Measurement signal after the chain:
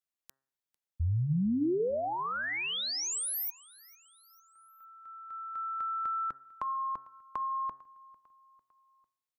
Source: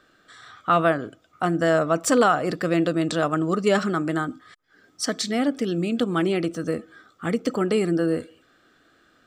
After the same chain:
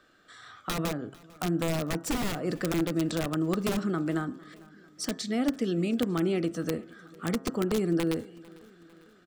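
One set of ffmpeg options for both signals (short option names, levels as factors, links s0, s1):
-filter_complex "[0:a]aeval=exprs='(mod(4.73*val(0)+1,2)-1)/4.73':c=same,acrossover=split=420[s0][s1];[s1]acompressor=threshold=0.0316:ratio=6[s2];[s0][s2]amix=inputs=2:normalize=0,bandreject=f=134.8:t=h:w=4,bandreject=f=269.6:t=h:w=4,bandreject=f=404.4:t=h:w=4,bandreject=f=539.2:t=h:w=4,bandreject=f=674:t=h:w=4,bandreject=f=808.8:t=h:w=4,bandreject=f=943.6:t=h:w=4,bandreject=f=1078.4:t=h:w=4,bandreject=f=1213.2:t=h:w=4,bandreject=f=1348:t=h:w=4,bandreject=f=1482.8:t=h:w=4,bandreject=f=1617.6:t=h:w=4,bandreject=f=1752.4:t=h:w=4,bandreject=f=1887.2:t=h:w=4,asplit=2[s3][s4];[s4]aecho=0:1:449|898|1347:0.0708|0.0368|0.0191[s5];[s3][s5]amix=inputs=2:normalize=0,volume=0.708"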